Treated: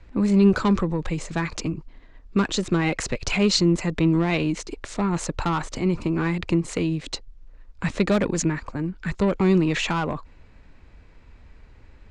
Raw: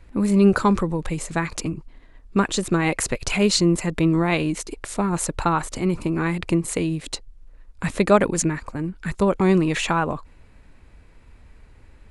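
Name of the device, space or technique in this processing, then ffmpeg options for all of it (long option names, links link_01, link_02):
one-band saturation: -filter_complex "[0:a]lowpass=frequency=6700:width=0.5412,lowpass=frequency=6700:width=1.3066,acrossover=split=310|2400[link_01][link_02][link_03];[link_02]asoftclip=type=tanh:threshold=-21dB[link_04];[link_01][link_04][link_03]amix=inputs=3:normalize=0"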